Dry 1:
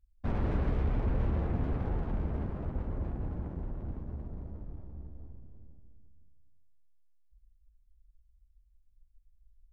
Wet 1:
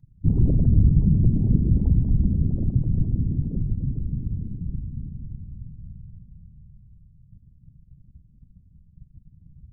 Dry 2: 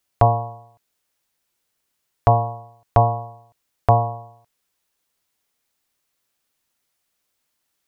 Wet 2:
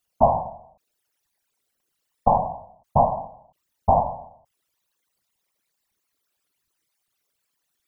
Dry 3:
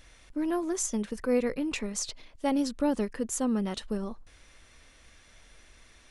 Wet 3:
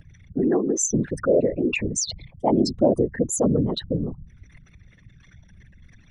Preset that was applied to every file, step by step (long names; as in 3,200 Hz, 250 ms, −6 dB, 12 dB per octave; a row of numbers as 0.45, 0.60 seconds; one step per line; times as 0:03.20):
spectral envelope exaggerated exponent 3
random phases in short frames
loudness normalisation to −23 LKFS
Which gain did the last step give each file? +13.0, −2.0, +7.5 decibels